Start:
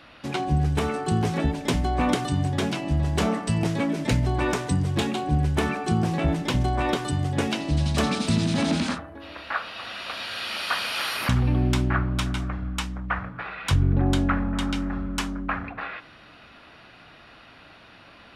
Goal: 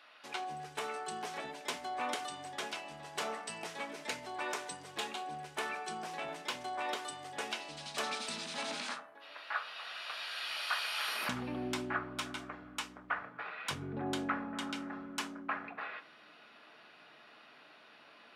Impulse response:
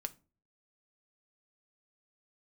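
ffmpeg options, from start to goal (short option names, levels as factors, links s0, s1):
-filter_complex "[0:a]asetnsamples=n=441:p=0,asendcmd='11.08 highpass f 310',highpass=680[s0];[1:a]atrim=start_sample=2205[s1];[s0][s1]afir=irnorm=-1:irlink=0,volume=0.473"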